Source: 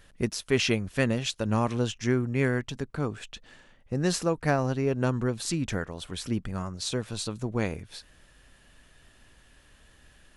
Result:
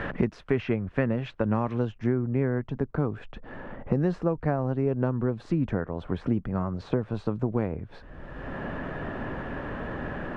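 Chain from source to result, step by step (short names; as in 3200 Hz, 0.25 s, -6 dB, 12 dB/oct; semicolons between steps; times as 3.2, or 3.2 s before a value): LPF 1900 Hz 12 dB/oct, from 1.85 s 1100 Hz; three-band squash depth 100%; gain +1 dB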